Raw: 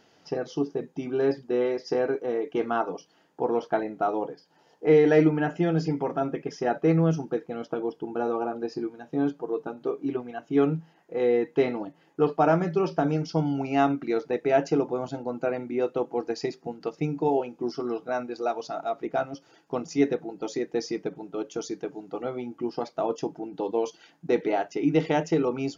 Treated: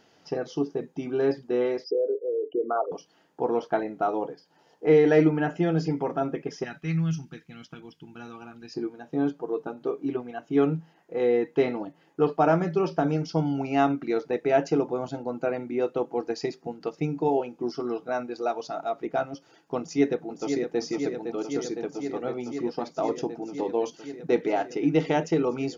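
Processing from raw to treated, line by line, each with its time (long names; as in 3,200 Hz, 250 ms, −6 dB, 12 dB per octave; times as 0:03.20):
0:01.84–0:02.92: spectral envelope exaggerated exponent 3
0:06.64–0:08.74: drawn EQ curve 150 Hz 0 dB, 530 Hz −24 dB, 2,300 Hz +2 dB
0:19.79–0:20.80: delay throw 510 ms, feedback 85%, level −7 dB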